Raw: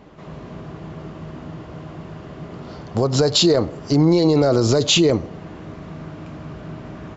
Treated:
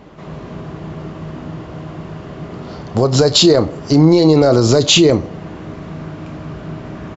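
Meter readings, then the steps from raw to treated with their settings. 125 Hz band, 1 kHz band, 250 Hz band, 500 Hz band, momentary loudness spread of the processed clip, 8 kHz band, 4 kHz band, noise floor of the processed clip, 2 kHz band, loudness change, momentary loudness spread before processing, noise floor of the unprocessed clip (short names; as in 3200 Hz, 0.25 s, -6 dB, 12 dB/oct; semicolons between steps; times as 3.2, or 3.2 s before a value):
+5.0 dB, +5.0 dB, +5.5 dB, +5.0 dB, 20 LU, n/a, +5.0 dB, -33 dBFS, +5.0 dB, +5.0 dB, 21 LU, -38 dBFS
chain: doubler 32 ms -14 dB; gain +5 dB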